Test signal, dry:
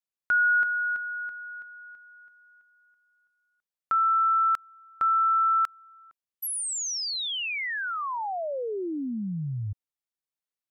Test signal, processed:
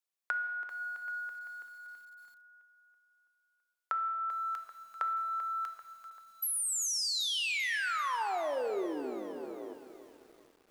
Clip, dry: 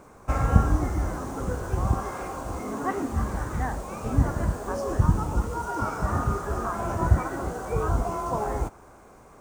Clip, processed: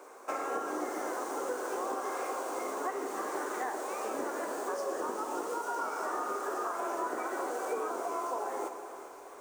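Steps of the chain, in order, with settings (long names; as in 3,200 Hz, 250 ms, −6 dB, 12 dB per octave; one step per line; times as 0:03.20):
sub-octave generator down 1 octave, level +4 dB
Butterworth high-pass 340 Hz 36 dB per octave
high-shelf EQ 4,600 Hz +2 dB
downward compressor 8 to 1, threshold −32 dBFS
dense smooth reverb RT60 1.9 s, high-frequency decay 0.9×, DRR 7.5 dB
feedback echo at a low word length 390 ms, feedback 55%, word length 9 bits, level −12.5 dB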